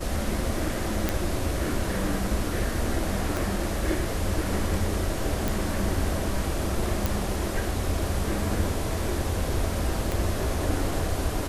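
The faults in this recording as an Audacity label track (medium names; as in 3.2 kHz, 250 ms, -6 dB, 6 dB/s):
1.090000	1.090000	pop -8 dBFS
3.370000	3.370000	pop
5.480000	5.480000	pop
7.060000	7.060000	pop
10.120000	10.120000	pop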